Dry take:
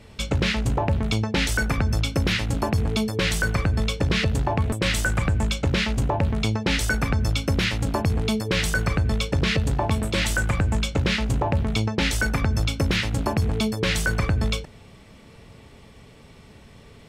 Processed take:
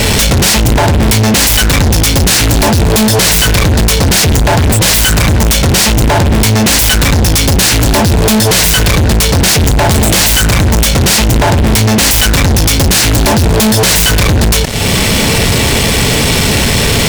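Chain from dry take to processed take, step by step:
phase distortion by the signal itself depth 0.32 ms
high-shelf EQ 3,100 Hz +11.5 dB
downward compressor 3 to 1, threshold −38 dBFS, peak gain reduction 17.5 dB
fuzz pedal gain 52 dB, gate −56 dBFS
parametric band 1,200 Hz −4.5 dB 0.21 octaves
level +6.5 dB

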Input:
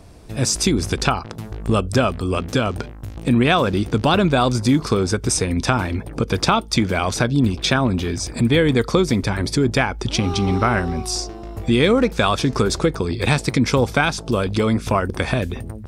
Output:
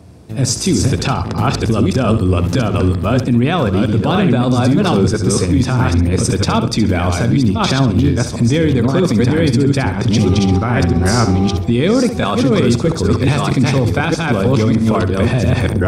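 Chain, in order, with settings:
delay that plays each chunk backwards 643 ms, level −3 dB
high-pass filter 74 Hz 24 dB per octave
mains-hum notches 50/100/150 Hz
noise gate −18 dBFS, range −8 dB
low-shelf EQ 350 Hz +10 dB
speech leveller 0.5 s
brickwall limiter −11.5 dBFS, peak gain reduction 17.5 dB
on a send: flutter between parallel walls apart 11.5 metres, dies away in 0.36 s
on the sum: level +6 dB

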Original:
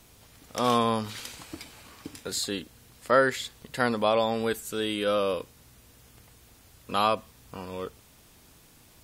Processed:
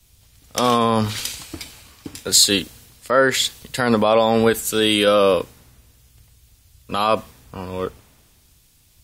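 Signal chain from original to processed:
boost into a limiter +18.5 dB
multiband upward and downward expander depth 70%
level −6 dB

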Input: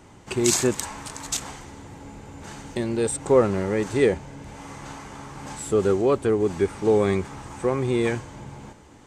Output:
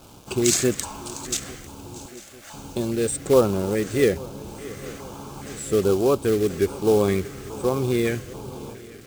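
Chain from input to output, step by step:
0:02.06–0:02.54: Butterworth high-pass 550 Hz 72 dB per octave
bit reduction 8 bits
feedback echo with a long and a short gap by turns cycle 847 ms, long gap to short 3 to 1, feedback 55%, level −19.5 dB
floating-point word with a short mantissa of 2 bits
auto-filter notch square 1.2 Hz 920–1,900 Hz
level +1 dB

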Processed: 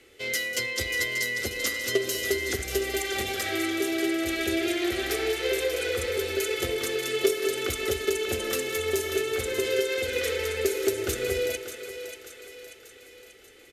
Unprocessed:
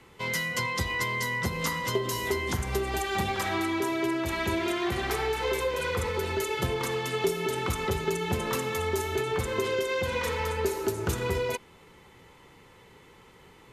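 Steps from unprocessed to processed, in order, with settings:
feedback echo with a high-pass in the loop 587 ms, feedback 55%, high-pass 430 Hz, level −8 dB
harmonic generator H 3 −17 dB, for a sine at −14 dBFS
low-shelf EQ 230 Hz −7.5 dB
phaser with its sweep stopped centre 400 Hz, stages 4
single-tap delay 194 ms −14 dB
level +8 dB

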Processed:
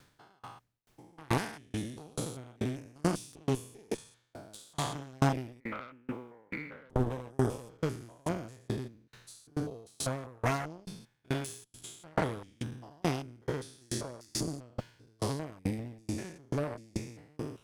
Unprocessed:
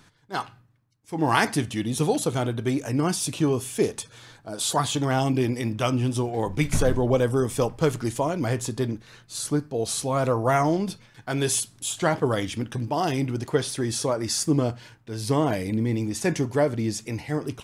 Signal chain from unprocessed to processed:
spectrum averaged block by block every 200 ms
0:05.60–0:06.90: loudspeaker in its box 290–2,200 Hz, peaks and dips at 370 Hz −6 dB, 700 Hz −9 dB, 1,400 Hz +8 dB, 2,100 Hz +10 dB
background noise pink −65 dBFS
harmonic generator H 4 −6 dB, 6 −15 dB, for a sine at −12 dBFS
tremolo with a ramp in dB decaying 2.3 Hz, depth 35 dB

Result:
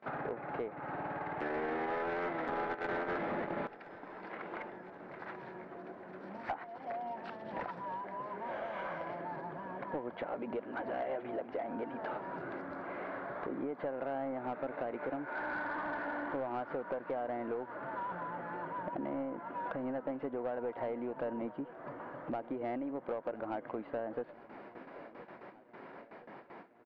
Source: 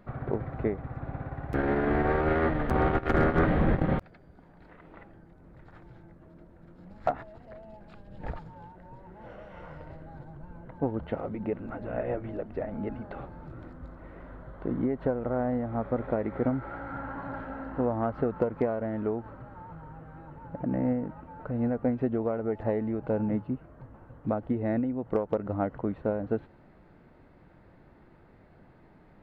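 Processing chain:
high-pass filter 190 Hz 12 dB per octave
noise gate with hold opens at −49 dBFS
downward compressor 3 to 1, threshold −45 dBFS, peak gain reduction 18 dB
mid-hump overdrive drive 19 dB, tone 1,600 Hz, clips at −26 dBFS
high-frequency loss of the air 75 metres
repeating echo 1,109 ms, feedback 57%, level −18 dB
wrong playback speed 44.1 kHz file played as 48 kHz
level +1 dB

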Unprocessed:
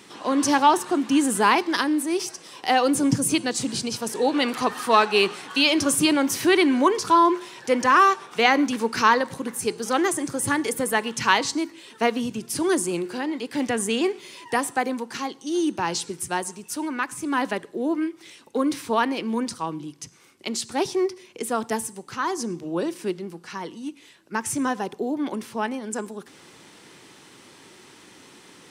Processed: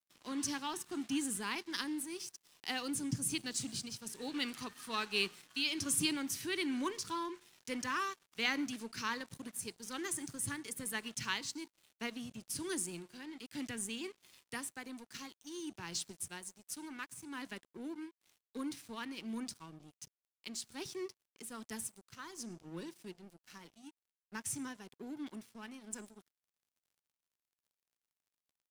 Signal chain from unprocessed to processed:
guitar amp tone stack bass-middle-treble 6-0-2
dead-zone distortion −58.5 dBFS
shaped tremolo triangle 1.2 Hz, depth 40%
level +6.5 dB

